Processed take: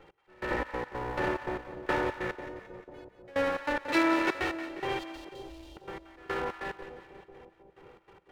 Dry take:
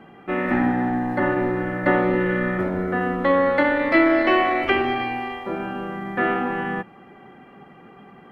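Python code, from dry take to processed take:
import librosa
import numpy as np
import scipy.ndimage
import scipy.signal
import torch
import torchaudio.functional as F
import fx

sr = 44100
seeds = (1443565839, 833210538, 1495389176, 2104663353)

y = fx.lower_of_two(x, sr, delay_ms=2.2)
y = fx.stiff_resonator(y, sr, f0_hz=220.0, decay_s=0.75, stiffness=0.008, at=(2.32, 3.28))
y = fx.cheby2_bandstop(y, sr, low_hz=200.0, high_hz=1500.0, order=4, stop_db=50, at=(4.99, 5.77))
y = fx.step_gate(y, sr, bpm=143, pattern='x...xx.x.xxxx.', floor_db=-24.0, edge_ms=4.5)
y = fx.highpass(y, sr, hz=120.0, slope=24, at=(3.88, 4.37))
y = fx.echo_split(y, sr, split_hz=750.0, low_ms=493, high_ms=177, feedback_pct=52, wet_db=-11.5)
y = F.gain(torch.from_numpy(y), -7.5).numpy()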